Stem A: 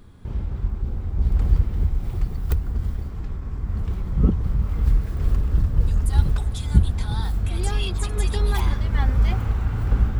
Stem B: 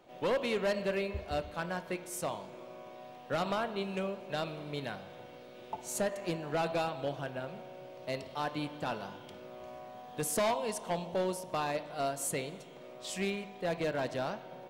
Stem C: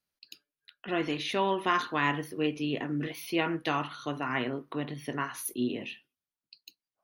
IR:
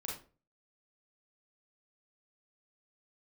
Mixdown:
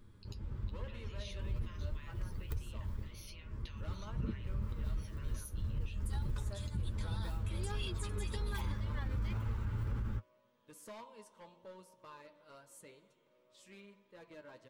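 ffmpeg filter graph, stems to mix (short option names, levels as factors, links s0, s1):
-filter_complex "[0:a]volume=0.398[s0];[1:a]adynamicequalizer=threshold=0.00398:dfrequency=1100:dqfactor=1.3:tfrequency=1100:tqfactor=1.3:attack=5:release=100:ratio=0.375:range=2.5:mode=boostabove:tftype=bell,adelay=500,volume=0.133[s1];[2:a]acompressor=threshold=0.0178:ratio=6,bandpass=f=6300:t=q:w=0.98:csg=0,volume=0.75,asplit=2[s2][s3];[s3]apad=whole_len=449477[s4];[s0][s4]sidechaincompress=threshold=0.001:ratio=5:attack=26:release=144[s5];[s5][s1][s2]amix=inputs=3:normalize=0,flanger=delay=8.4:depth=1.9:regen=36:speed=1.9:shape=triangular,asuperstop=centerf=730:order=4:qfactor=4.3,alimiter=level_in=1.78:limit=0.0631:level=0:latency=1:release=41,volume=0.562"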